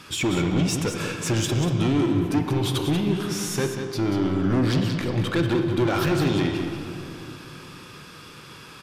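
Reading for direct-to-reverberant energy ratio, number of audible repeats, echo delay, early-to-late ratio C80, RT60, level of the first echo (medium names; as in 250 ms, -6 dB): 3.5 dB, 1, 188 ms, 4.5 dB, 2.8 s, -8.0 dB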